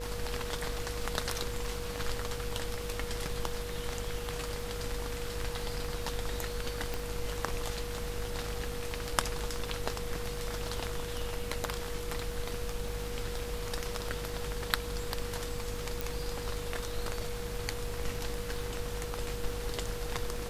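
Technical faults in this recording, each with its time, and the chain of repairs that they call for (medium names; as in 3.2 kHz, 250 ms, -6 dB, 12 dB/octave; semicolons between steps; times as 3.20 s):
buzz 50 Hz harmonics 37 -41 dBFS
crackle 32 per s -41 dBFS
whine 480 Hz -40 dBFS
6.94 s: pop
16.01 s: pop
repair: de-click; de-hum 50 Hz, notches 37; band-stop 480 Hz, Q 30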